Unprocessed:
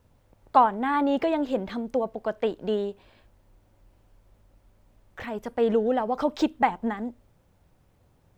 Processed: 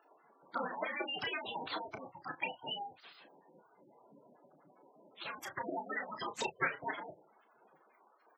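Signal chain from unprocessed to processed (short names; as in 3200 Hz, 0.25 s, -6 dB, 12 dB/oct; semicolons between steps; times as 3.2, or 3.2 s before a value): spectral gate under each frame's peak -25 dB strong; tone controls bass +5 dB, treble -1 dB; spectral gate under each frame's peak -25 dB weak; HPF 120 Hz 24 dB/oct; doubler 32 ms -8.5 dB; gain +12.5 dB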